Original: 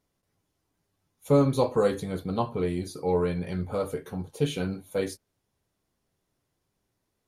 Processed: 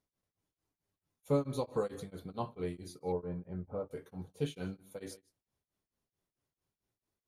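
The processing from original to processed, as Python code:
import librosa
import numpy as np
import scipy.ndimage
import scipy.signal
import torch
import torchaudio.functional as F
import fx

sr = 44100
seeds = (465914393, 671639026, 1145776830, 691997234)

y = fx.lowpass(x, sr, hz=1000.0, slope=12, at=(3.12, 3.91))
y = y + 10.0 ** (-20.5 / 20.0) * np.pad(y, (int(154 * sr / 1000.0), 0))[:len(y)]
y = y * np.abs(np.cos(np.pi * 4.5 * np.arange(len(y)) / sr))
y = y * 10.0 ** (-8.5 / 20.0)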